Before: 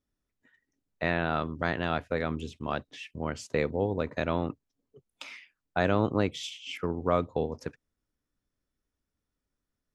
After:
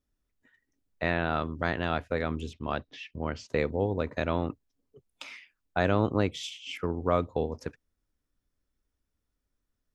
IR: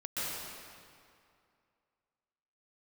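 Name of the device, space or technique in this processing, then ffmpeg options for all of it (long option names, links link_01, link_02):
low shelf boost with a cut just above: -filter_complex "[0:a]lowshelf=frequency=77:gain=7.5,equalizer=frequency=150:width_type=o:width=0.77:gain=-2.5,asettb=1/sr,asplit=3[link_01][link_02][link_03];[link_01]atrim=end=2.534[link_04];[link_02]atrim=start=2.53:end=3.49,asetpts=PTS-STARTPTS,afade=type=in:duration=0.004:curve=qsin,afade=type=out:start_time=0.956:duration=0.004:curve=qsin,lowpass=frequency=5600:width=0.5412,lowpass=frequency=5600:width=1.3066[link_05];[link_03]atrim=start=3.486[link_06];[link_04][link_05]acrossfade=duration=0.004:curve1=hsin:curve2=qsin[link_07];[link_07][link_06]acrossfade=duration=0.004:curve1=qsin:curve2=hsin"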